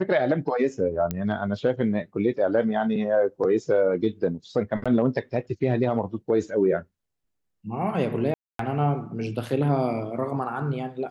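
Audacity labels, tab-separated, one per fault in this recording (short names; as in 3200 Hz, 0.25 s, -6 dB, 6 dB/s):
1.110000	1.110000	pop -14 dBFS
4.840000	4.860000	gap 16 ms
8.340000	8.590000	gap 0.253 s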